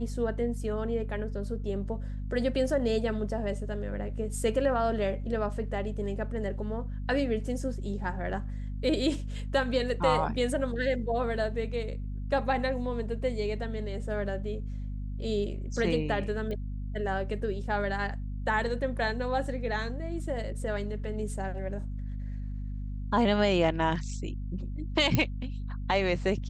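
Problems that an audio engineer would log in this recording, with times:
hum 50 Hz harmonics 5 -35 dBFS
16.51 pop -26 dBFS
25.15 pop -11 dBFS

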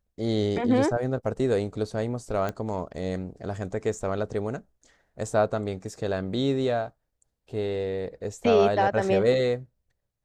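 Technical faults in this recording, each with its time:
2.49 pop -17 dBFS

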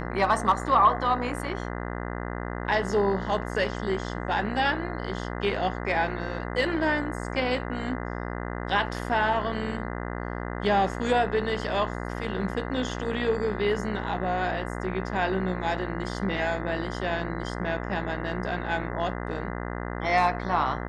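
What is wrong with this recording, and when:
buzz 60 Hz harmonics 34 -33 dBFS

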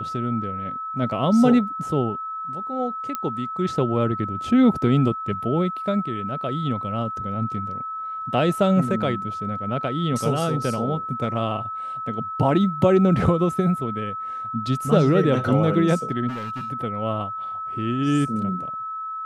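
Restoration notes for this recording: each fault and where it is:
tone 1300 Hz -28 dBFS
3.15 pop -12 dBFS
16.28–16.71 clipped -27 dBFS

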